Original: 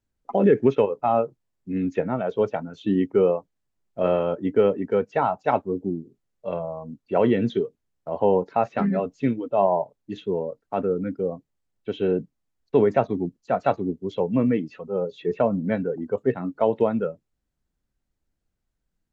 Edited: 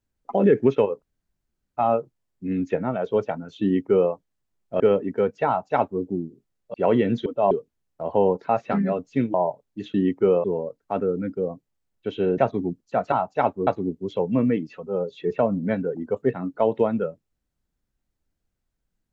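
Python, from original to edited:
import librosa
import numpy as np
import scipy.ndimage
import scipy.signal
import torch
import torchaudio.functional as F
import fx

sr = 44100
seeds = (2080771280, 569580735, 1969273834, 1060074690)

y = fx.edit(x, sr, fx.insert_room_tone(at_s=1.02, length_s=0.75),
    fx.duplicate(start_s=2.87, length_s=0.5, to_s=10.26),
    fx.cut(start_s=4.05, length_s=0.49),
    fx.duplicate(start_s=5.21, length_s=0.55, to_s=13.68),
    fx.cut(start_s=6.48, length_s=0.58),
    fx.move(start_s=9.41, length_s=0.25, to_s=7.58),
    fx.cut(start_s=12.2, length_s=0.74), tone=tone)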